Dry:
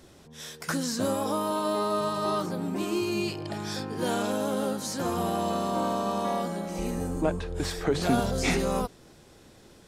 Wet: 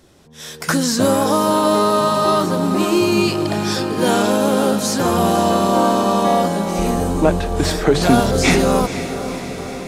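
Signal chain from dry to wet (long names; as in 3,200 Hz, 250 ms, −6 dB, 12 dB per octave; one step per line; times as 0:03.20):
automatic gain control gain up to 11 dB
on a send: feedback delay with all-pass diffusion 493 ms, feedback 68%, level −11.5 dB
on the sum: level +1.5 dB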